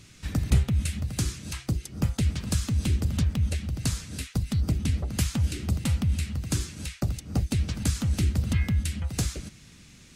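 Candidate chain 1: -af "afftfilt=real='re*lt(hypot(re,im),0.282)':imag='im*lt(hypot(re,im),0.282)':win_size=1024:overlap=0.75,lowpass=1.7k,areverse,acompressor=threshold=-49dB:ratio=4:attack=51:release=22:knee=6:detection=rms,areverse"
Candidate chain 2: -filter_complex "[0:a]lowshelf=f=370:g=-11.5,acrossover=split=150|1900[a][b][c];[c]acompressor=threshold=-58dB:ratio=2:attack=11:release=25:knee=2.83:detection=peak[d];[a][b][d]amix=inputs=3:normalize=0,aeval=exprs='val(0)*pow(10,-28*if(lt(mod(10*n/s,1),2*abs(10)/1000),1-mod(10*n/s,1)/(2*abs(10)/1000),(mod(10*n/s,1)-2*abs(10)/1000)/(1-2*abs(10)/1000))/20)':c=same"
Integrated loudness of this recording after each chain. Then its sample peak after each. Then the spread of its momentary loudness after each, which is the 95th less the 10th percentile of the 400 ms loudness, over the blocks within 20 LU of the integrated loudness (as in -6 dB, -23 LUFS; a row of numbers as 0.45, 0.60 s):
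-47.0, -46.5 LUFS; -31.5, -23.0 dBFS; 2, 7 LU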